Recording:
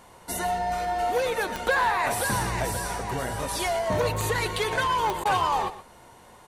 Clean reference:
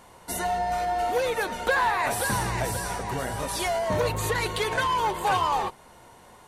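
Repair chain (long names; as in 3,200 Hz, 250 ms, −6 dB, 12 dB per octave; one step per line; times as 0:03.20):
click removal
repair the gap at 0:05.24, 12 ms
echo removal 121 ms −14 dB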